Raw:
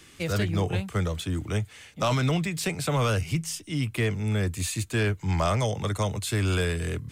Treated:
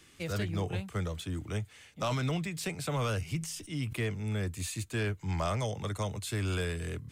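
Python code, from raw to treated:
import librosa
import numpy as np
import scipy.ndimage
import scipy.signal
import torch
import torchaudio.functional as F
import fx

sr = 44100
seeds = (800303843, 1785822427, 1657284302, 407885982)

y = fx.sustainer(x, sr, db_per_s=76.0, at=(3.38, 4.03))
y = y * librosa.db_to_amplitude(-7.0)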